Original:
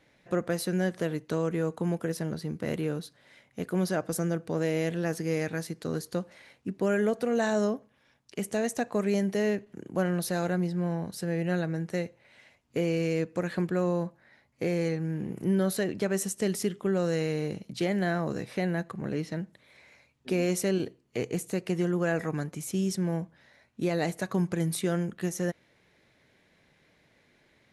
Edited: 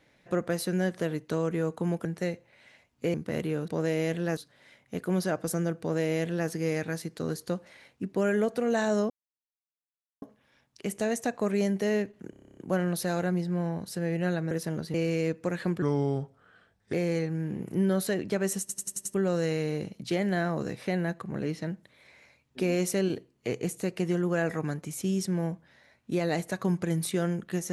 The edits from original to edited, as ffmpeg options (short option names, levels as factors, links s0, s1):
-filter_complex "[0:a]asplit=25[s0][s1][s2][s3][s4][s5][s6][s7][s8][s9][s10][s11][s12][s13][s14][s15][s16][s17][s18][s19][s20][s21][s22][s23][s24];[s0]atrim=end=2.052[s25];[s1]atrim=start=11.768:end=12.862[s26];[s2]atrim=start=2.478:end=3.022[s27];[s3]atrim=start=4.448:end=5.142[s28];[s4]atrim=start=3.018:end=7.75,asetpts=PTS-STARTPTS,afade=t=out:st=4.728:d=0.004:c=hsin,apad=pad_dur=1.12[s29];[s5]atrim=start=7.75:end=9.862,asetpts=PTS-STARTPTS,afade=t=in:d=0.004:c=hsin[s30];[s6]atrim=start=9.828:end=9.862[s31];[s7]atrim=start=9.828:end=9.862[s32];[s8]atrim=start=9.828:end=9.862[s33];[s9]atrim=start=9.828:end=9.862[s34];[s10]atrim=start=9.828:end=9.862[s35];[s11]atrim=start=9.828:end=9.862[s36];[s12]atrim=start=9.828:end=9.862[s37];[s13]atrim=start=9.828:end=9.862[s38];[s14]atrim=start=9.828:end=11.772[s39];[s15]atrim=start=2.048:end=2.482[s40];[s16]atrim=start=12.858:end=13.744[s41];[s17]atrim=start=13.74:end=14.63,asetpts=PTS-STARTPTS,asetrate=35280,aresample=44100,atrim=end_sample=49061,asetpts=PTS-STARTPTS[s42];[s18]atrim=start=14.626:end=16.392[s43];[s19]atrim=start=16.298:end=16.392[s44];[s20]atrim=start=16.298:end=16.392[s45];[s21]atrim=start=16.298:end=16.392[s46];[s22]atrim=start=16.298:end=16.392[s47];[s23]atrim=start=16.298:end=16.392[s48];[s24]atrim=start=16.838[s49];[s25][s26]acrossfade=d=0.004:c1=hsin:c2=hsin[s50];[s50][s27]acrossfade=d=0.004:c1=hsin:c2=hsin[s51];[s51][s28]acrossfade=d=0.004:c1=hsin:c2=hsin[s52];[s29][s30]concat=n=2:v=0:a=1[s53];[s52][s53]acrossfade=d=0.004:c1=hsin:c2=hsin[s54];[s54][s31]acrossfade=d=0.004:c1=hsin:c2=hsin[s55];[s55][s32]acrossfade=d=0.004:c1=hsin:c2=hsin[s56];[s56][s33]acrossfade=d=0.004:c1=hsin:c2=hsin[s57];[s57][s34]acrossfade=d=0.004:c1=hsin:c2=hsin[s58];[s58][s35]acrossfade=d=0.004:c1=hsin:c2=hsin[s59];[s59][s36]acrossfade=d=0.004:c1=hsin:c2=hsin[s60];[s60][s37]acrossfade=d=0.004:c1=hsin:c2=hsin[s61];[s61][s38]acrossfade=d=0.004:c1=hsin:c2=hsin[s62];[s62][s39]acrossfade=d=0.004:c1=hsin:c2=hsin[s63];[s63][s40]acrossfade=d=0.004:c1=hsin:c2=hsin[s64];[s64][s41]acrossfade=d=0.004:c1=hsin:c2=hsin[s65];[s65][s42]acrossfade=d=0.004:c1=hsin:c2=hsin[s66];[s66][s43]acrossfade=d=0.004:c1=hsin:c2=hsin[s67];[s67][s44]acrossfade=d=0.004:c1=hsin:c2=hsin[s68];[s68][s45]acrossfade=d=0.004:c1=hsin:c2=hsin[s69];[s69][s46]acrossfade=d=0.004:c1=hsin:c2=hsin[s70];[s70][s47]acrossfade=d=0.004:c1=hsin:c2=hsin[s71];[s71][s48]acrossfade=d=0.004:c1=hsin:c2=hsin[s72];[s72][s49]acrossfade=d=0.004:c1=hsin:c2=hsin"